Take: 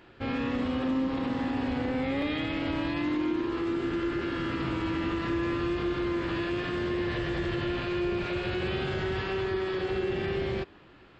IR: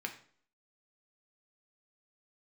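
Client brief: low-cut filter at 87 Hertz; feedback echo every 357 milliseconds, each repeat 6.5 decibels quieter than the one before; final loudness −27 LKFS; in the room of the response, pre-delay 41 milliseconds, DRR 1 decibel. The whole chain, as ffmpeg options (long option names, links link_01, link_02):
-filter_complex "[0:a]highpass=87,aecho=1:1:357|714|1071|1428|1785|2142:0.473|0.222|0.105|0.0491|0.0231|0.0109,asplit=2[link_01][link_02];[1:a]atrim=start_sample=2205,adelay=41[link_03];[link_02][link_03]afir=irnorm=-1:irlink=0,volume=-2.5dB[link_04];[link_01][link_04]amix=inputs=2:normalize=0"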